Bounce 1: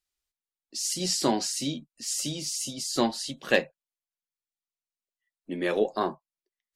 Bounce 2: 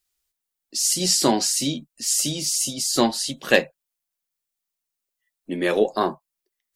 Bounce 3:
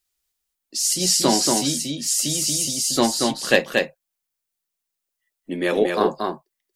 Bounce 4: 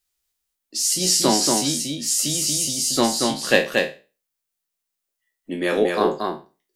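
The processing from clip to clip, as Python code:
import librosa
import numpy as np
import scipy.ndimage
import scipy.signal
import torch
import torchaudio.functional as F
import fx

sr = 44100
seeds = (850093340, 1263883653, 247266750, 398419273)

y1 = fx.high_shelf(x, sr, hz=8600.0, db=9.0)
y1 = y1 * librosa.db_to_amplitude(5.5)
y2 = y1 + 10.0 ** (-3.5 / 20.0) * np.pad(y1, (int(232 * sr / 1000.0), 0))[:len(y1)]
y3 = fx.spec_trails(y2, sr, decay_s=0.32)
y3 = y3 * librosa.db_to_amplitude(-1.0)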